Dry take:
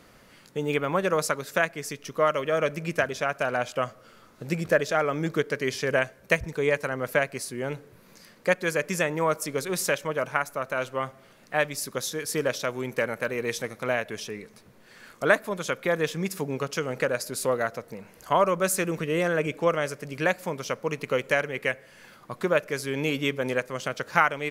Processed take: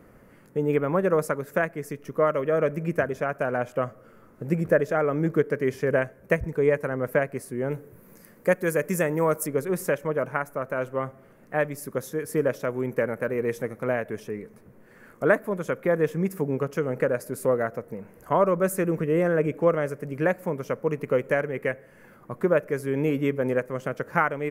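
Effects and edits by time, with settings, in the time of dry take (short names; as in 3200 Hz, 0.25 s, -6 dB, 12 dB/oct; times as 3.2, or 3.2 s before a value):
7.7–9.46 high shelf 7200 Hz -> 4600 Hz +11.5 dB
whole clip: EQ curve 470 Hz 0 dB, 720 Hz -5 dB, 1900 Hz -7 dB, 3900 Hz -23 dB, 14000 Hz -6 dB; gain +4 dB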